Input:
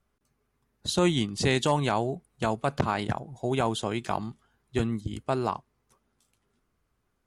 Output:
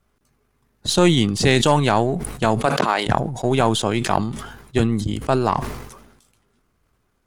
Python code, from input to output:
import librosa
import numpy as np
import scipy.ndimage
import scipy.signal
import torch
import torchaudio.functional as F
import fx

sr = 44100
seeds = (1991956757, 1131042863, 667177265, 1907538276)

y = np.where(x < 0.0, 10.0 ** (-3.0 / 20.0) * x, x)
y = fx.highpass(y, sr, hz=fx.line((2.65, 230.0), (3.06, 490.0)), slope=12, at=(2.65, 3.06), fade=0.02)
y = fx.sustainer(y, sr, db_per_s=55.0)
y = y * 10.0 ** (9.0 / 20.0)